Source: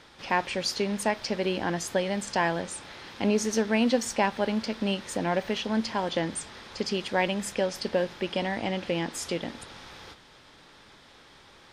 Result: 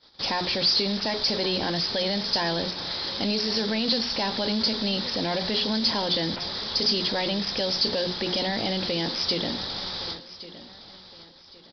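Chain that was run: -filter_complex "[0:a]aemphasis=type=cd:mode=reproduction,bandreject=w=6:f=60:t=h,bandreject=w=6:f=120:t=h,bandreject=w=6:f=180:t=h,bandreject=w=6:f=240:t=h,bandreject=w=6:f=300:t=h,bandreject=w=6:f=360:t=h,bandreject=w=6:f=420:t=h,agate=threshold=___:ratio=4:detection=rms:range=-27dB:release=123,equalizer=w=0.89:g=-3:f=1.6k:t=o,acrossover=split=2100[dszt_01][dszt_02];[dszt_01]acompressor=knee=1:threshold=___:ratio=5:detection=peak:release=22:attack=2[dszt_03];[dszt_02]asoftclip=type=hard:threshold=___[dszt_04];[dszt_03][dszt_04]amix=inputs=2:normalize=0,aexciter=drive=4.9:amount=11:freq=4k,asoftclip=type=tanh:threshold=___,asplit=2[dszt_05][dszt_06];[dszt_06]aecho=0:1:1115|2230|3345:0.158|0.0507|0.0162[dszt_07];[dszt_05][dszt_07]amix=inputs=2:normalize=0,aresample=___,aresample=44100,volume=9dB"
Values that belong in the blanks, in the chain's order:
-49dB, -35dB, -40dB, -22.5dB, 11025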